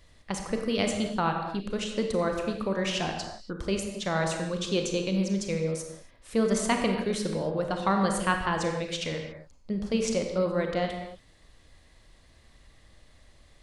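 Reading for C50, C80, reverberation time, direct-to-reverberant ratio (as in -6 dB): 4.0 dB, 6.0 dB, not exponential, 3.0 dB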